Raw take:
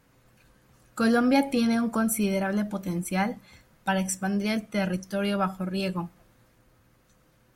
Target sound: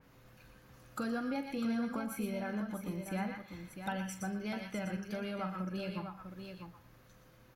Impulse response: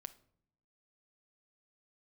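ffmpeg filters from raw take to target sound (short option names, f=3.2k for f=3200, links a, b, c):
-filter_complex "[0:a]equalizer=f=8.4k:w=2.6:g=-10,asplit=2[a][b];[b]highpass=f=1k:w=0.5412,highpass=f=1k:w=1.3066[c];[1:a]atrim=start_sample=2205,adelay=119[d];[c][d]afir=irnorm=-1:irlink=0,volume=-1.5dB[e];[a][e]amix=inputs=2:normalize=0,acompressor=threshold=-40dB:ratio=3,aecho=1:1:43|117|649:0.266|0.1|0.398,adynamicequalizer=threshold=0.00112:dfrequency=3400:dqfactor=0.7:tfrequency=3400:tqfactor=0.7:attack=5:release=100:ratio=0.375:range=2:mode=cutabove:tftype=highshelf"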